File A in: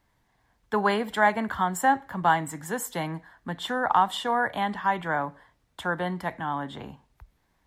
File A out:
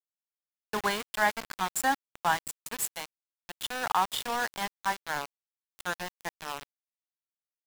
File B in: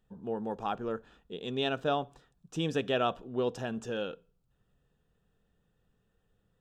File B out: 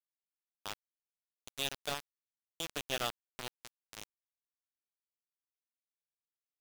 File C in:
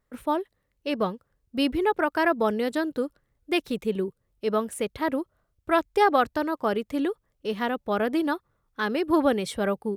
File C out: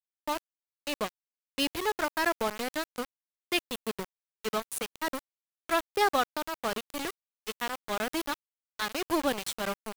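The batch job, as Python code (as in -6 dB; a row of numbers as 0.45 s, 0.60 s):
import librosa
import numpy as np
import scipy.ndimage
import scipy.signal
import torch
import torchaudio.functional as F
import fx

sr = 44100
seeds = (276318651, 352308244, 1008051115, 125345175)

y = fx.high_shelf(x, sr, hz=2300.0, db=12.0)
y = np.where(np.abs(y) >= 10.0 ** (-22.0 / 20.0), y, 0.0)
y = F.gain(torch.from_numpy(y), -7.0).numpy()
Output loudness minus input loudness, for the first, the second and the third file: -5.0 LU, -6.0 LU, -6.0 LU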